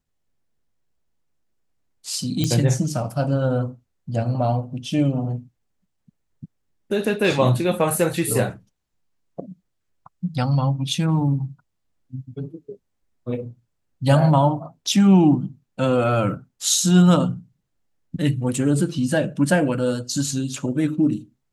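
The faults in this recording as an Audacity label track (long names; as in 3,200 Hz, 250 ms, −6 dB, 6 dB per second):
2.440000	2.440000	click −8 dBFS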